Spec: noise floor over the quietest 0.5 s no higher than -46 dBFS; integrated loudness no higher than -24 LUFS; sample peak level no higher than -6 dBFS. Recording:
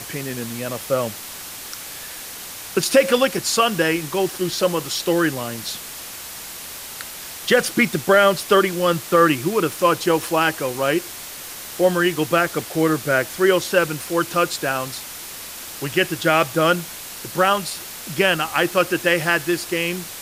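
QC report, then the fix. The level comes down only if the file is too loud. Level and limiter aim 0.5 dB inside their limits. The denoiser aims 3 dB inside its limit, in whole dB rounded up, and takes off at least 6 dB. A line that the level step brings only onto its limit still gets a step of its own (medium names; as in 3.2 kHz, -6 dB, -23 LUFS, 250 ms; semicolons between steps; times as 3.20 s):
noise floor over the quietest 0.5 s -35 dBFS: fail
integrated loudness -20.0 LUFS: fail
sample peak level -4.0 dBFS: fail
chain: noise reduction 10 dB, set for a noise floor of -35 dBFS; trim -4.5 dB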